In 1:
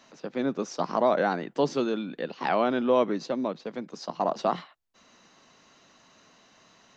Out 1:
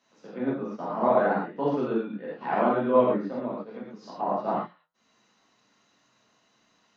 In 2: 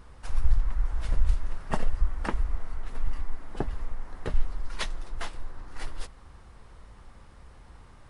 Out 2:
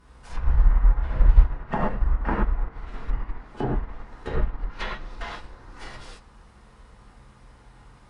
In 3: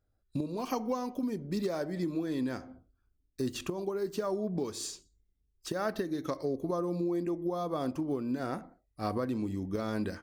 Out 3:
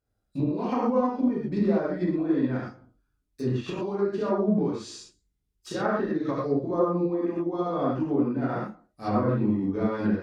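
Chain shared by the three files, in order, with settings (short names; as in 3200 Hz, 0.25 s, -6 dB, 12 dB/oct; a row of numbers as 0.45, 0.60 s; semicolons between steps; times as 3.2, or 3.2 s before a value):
HPF 58 Hz 6 dB/oct; non-linear reverb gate 0.15 s flat, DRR -7 dB; treble ducked by the level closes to 1800 Hz, closed at -22 dBFS; flange 0.72 Hz, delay 1.9 ms, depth 7.5 ms, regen -85%; upward expander 1.5:1, over -40 dBFS; match loudness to -27 LUFS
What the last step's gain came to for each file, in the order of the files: +1.0, +10.0, +6.5 dB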